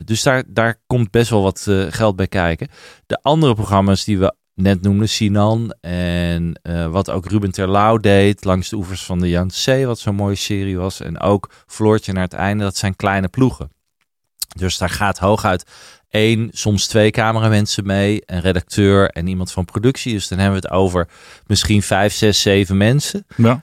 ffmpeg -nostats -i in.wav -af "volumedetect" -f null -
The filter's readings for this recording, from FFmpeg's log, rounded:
mean_volume: -16.4 dB
max_volume: -1.4 dB